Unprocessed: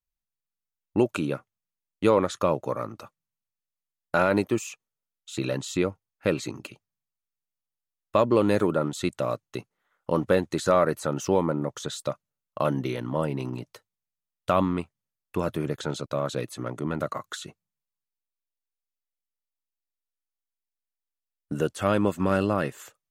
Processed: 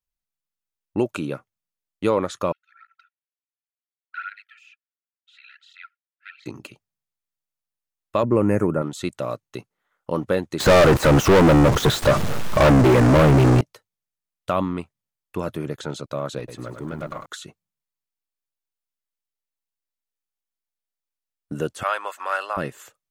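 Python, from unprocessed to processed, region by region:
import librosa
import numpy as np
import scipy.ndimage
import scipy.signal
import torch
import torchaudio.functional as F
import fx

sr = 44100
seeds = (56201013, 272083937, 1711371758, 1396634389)

y = fx.chain(x, sr, fx.brickwall_highpass(low_hz=1300.0),
    fx.air_absorb(metres=370.0),
    fx.flanger_cancel(hz=1.4, depth_ms=3.4), at=(2.52, 6.46))
y = fx.chain(y, sr, fx.cheby1_bandstop(low_hz=2300.0, high_hz=6000.0, order=2),
    fx.low_shelf(hz=250.0, db=9.5), at=(8.23, 8.82))
y = fx.chain(y, sr, fx.zero_step(step_db=-30.5),
    fx.lowpass(hz=1200.0, slope=6),
    fx.leveller(passes=5), at=(10.6, 13.61))
y = fx.chain(y, sr, fx.high_shelf(hz=7300.0, db=-8.5),
    fx.tube_stage(drive_db=22.0, bias=0.3),
    fx.echo_crushed(ms=101, feedback_pct=35, bits=10, wet_db=-6.5), at=(16.38, 17.26))
y = fx.chain(y, sr, fx.highpass(hz=670.0, slope=24),
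    fx.peak_eq(hz=1500.0, db=6.0, octaves=1.5), at=(21.83, 22.57))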